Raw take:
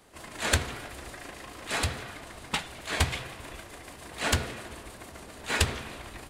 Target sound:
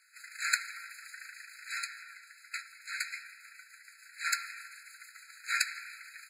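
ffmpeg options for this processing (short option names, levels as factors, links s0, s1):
-filter_complex "[0:a]asplit=3[s0][s1][s2];[s0]afade=t=out:st=1.68:d=0.02[s3];[s1]flanger=delay=7.5:depth=5.7:regen=51:speed=1.1:shape=sinusoidal,afade=t=in:st=1.68:d=0.02,afade=t=out:st=4.24:d=0.02[s4];[s2]afade=t=in:st=4.24:d=0.02[s5];[s3][s4][s5]amix=inputs=3:normalize=0,afreqshift=-76,afftfilt=real='re*eq(mod(floor(b*sr/1024/1300),2),1)':imag='im*eq(mod(floor(b*sr/1024/1300),2),1)':win_size=1024:overlap=0.75"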